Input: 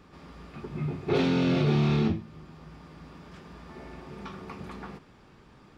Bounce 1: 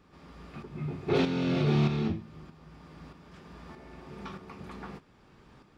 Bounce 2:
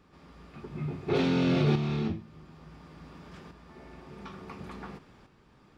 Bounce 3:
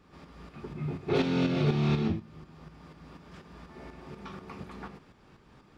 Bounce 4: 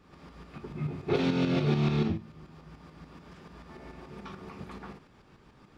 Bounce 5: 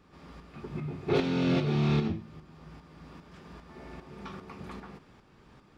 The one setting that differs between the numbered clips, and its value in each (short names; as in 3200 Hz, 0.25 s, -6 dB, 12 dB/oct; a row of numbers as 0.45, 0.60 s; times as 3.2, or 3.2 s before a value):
tremolo, rate: 1.6, 0.57, 4.1, 6.9, 2.5 Hz